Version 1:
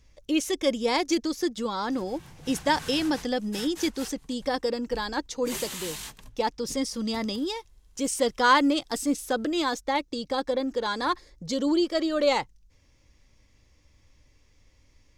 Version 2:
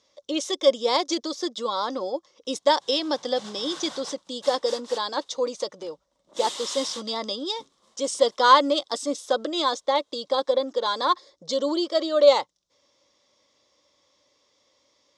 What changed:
background: entry +0.90 s
master: add loudspeaker in its box 350–8,300 Hz, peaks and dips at 570 Hz +9 dB, 1,100 Hz +7 dB, 1,700 Hz −5 dB, 2,500 Hz −7 dB, 3,600 Hz +9 dB, 5,300 Hz +4 dB

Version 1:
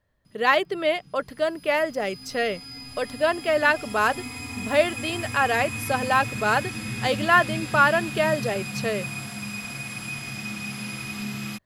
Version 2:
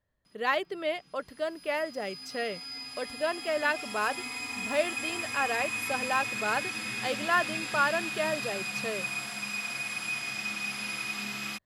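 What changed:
speech −8.0 dB
background: add meter weighting curve A

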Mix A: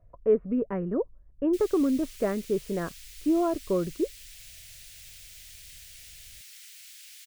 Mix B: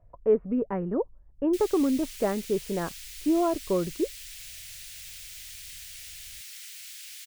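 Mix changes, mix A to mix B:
background +5.0 dB
master: add parametric band 850 Hz +9.5 dB 0.3 octaves

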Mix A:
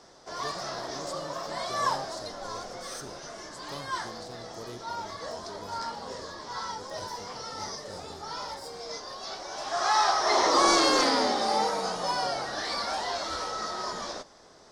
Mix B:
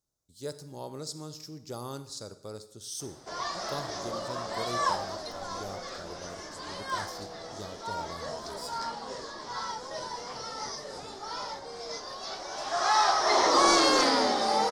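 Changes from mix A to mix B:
speech +4.5 dB
background: entry +3.00 s

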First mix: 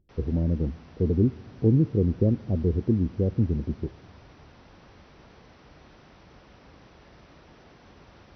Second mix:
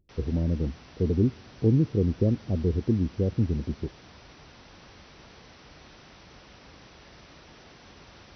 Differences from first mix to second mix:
speech: send −8.0 dB
master: add high-shelf EQ 2,400 Hz +10.5 dB

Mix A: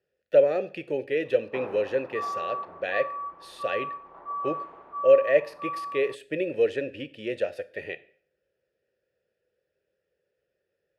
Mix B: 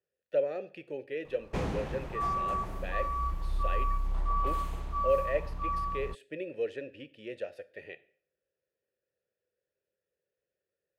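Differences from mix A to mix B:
speech −10.0 dB
background: remove flat-topped band-pass 760 Hz, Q 0.64

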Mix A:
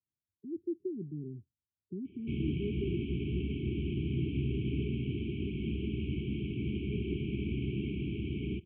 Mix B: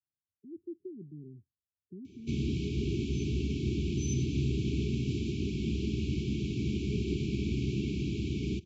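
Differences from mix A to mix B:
speech −8.5 dB
master: remove Chebyshev low-pass with heavy ripple 3,200 Hz, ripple 3 dB

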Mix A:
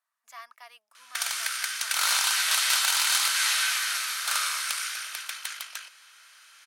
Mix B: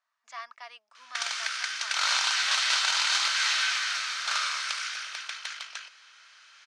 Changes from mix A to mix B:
speech +4.0 dB
master: add low-pass filter 6,300 Hz 24 dB per octave

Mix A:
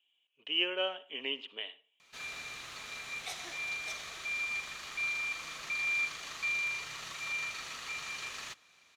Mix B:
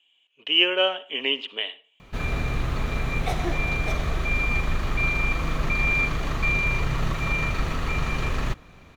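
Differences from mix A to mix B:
speech +11.5 dB
background: remove resonant band-pass 6,500 Hz, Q 0.85

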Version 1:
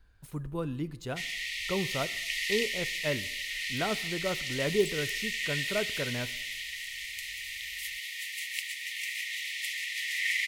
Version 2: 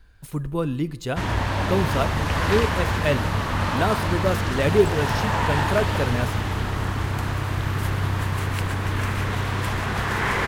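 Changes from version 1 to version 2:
speech +9.0 dB
background: remove linear-phase brick-wall high-pass 1,800 Hz

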